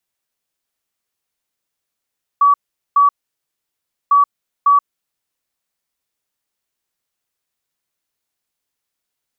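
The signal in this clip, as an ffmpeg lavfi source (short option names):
-f lavfi -i "aevalsrc='0.422*sin(2*PI*1140*t)*clip(min(mod(mod(t,1.7),0.55),0.13-mod(mod(t,1.7),0.55))/0.005,0,1)*lt(mod(t,1.7),1.1)':d=3.4:s=44100"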